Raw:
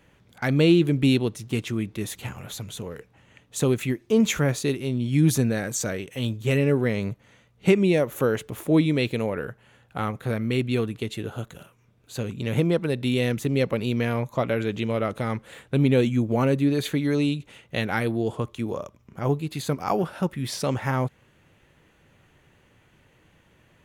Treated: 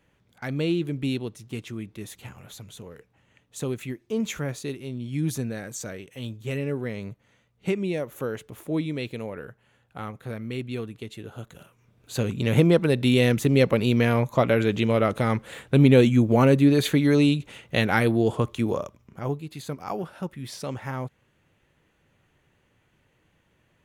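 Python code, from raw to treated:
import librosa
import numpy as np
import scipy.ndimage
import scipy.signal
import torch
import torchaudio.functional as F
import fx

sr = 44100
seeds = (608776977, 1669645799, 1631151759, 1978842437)

y = fx.gain(x, sr, db=fx.line((11.26, -7.5), (12.17, 4.0), (18.72, 4.0), (19.44, -7.0)))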